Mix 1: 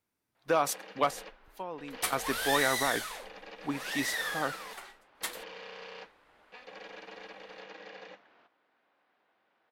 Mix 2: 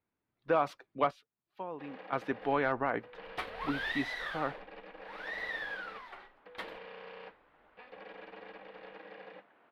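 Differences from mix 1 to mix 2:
first sound: entry +1.25 s
second sound: entry +1.35 s
master: add high-frequency loss of the air 370 metres

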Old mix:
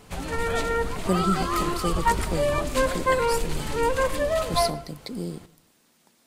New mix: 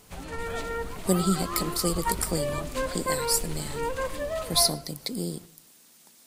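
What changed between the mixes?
speech: add high-shelf EQ 4,000 Hz +12 dB
background −7.0 dB

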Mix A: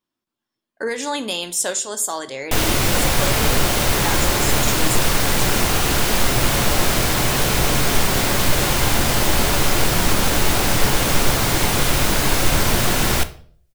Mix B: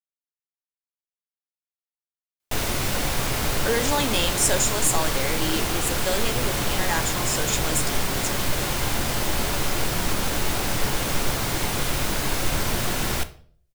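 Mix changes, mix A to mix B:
speech: entry +2.85 s
background −7.0 dB

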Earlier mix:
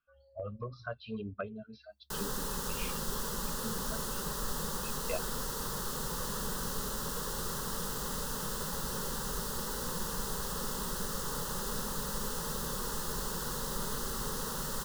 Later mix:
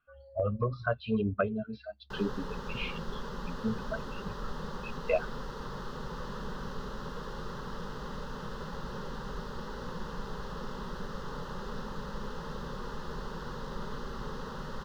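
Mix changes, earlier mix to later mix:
speech +10.5 dB
master: add high-frequency loss of the air 260 metres

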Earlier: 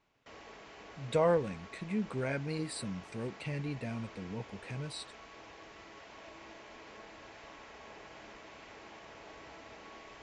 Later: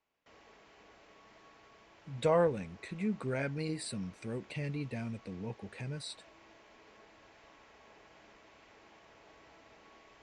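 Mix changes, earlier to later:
speech: entry +1.10 s
background −8.0 dB

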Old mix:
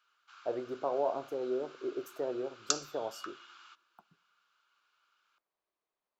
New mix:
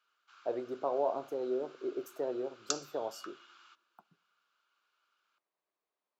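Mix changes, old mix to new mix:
background −4.0 dB
master: add high-pass filter 130 Hz

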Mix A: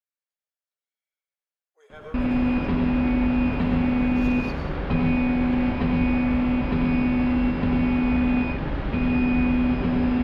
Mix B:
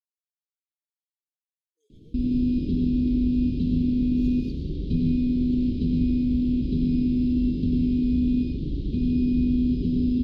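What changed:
speech −7.5 dB
master: add elliptic band-stop filter 350–3,800 Hz, stop band 50 dB

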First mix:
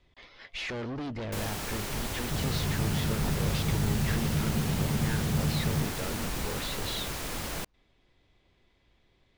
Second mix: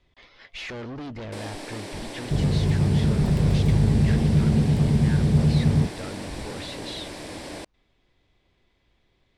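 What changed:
first sound: add loudspeaker in its box 270–9,000 Hz, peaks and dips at 300 Hz +10 dB, 590 Hz +5 dB, 1,300 Hz −10 dB, 2,900 Hz −4 dB, 6,600 Hz −9 dB
second sound +10.0 dB

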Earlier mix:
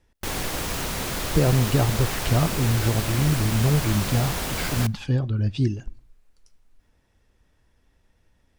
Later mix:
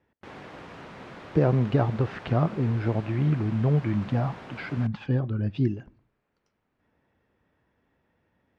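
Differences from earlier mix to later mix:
background −11.0 dB
master: add band-pass filter 130–2,100 Hz

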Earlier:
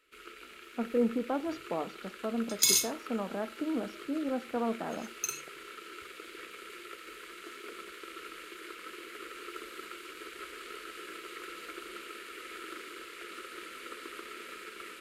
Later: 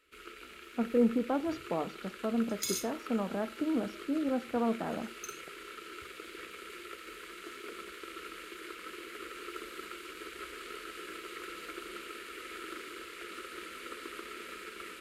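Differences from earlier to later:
second sound −11.0 dB
master: add parametric band 80 Hz +8 dB 2.3 octaves

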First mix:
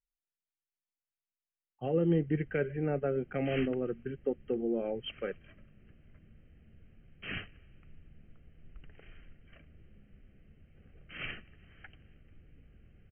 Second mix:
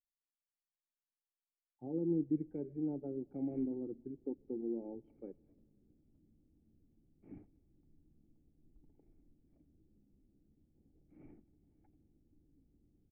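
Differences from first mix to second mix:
speech: send on
master: add formant resonators in series u

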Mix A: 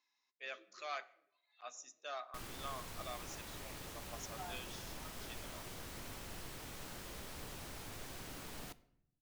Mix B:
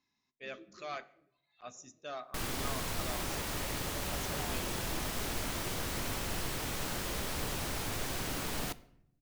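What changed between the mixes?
speech: remove high-pass filter 690 Hz 12 dB per octave
background +12.0 dB

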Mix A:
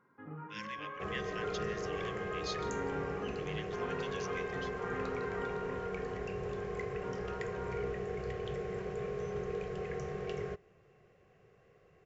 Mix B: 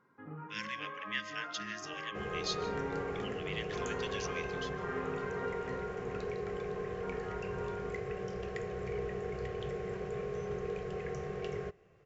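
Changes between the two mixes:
speech +5.0 dB
second sound: entry +1.15 s

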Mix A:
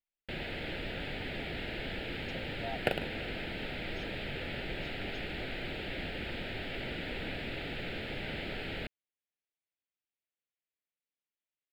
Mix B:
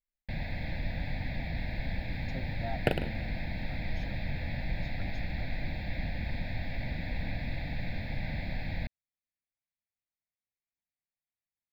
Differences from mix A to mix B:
first sound: add phaser with its sweep stopped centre 2,000 Hz, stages 8
master: add low-shelf EQ 270 Hz +11 dB

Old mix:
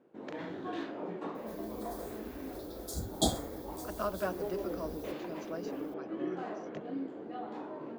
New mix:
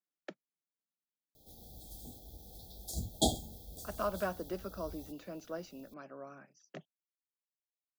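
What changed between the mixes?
speech: add high-pass filter 140 Hz 24 dB per octave
first sound: muted

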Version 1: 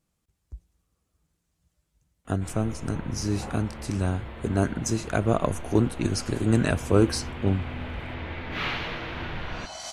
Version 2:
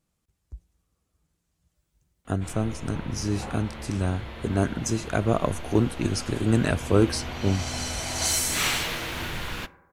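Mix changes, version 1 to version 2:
first sound: remove high-frequency loss of the air 290 metres
second sound: entry −2.25 s

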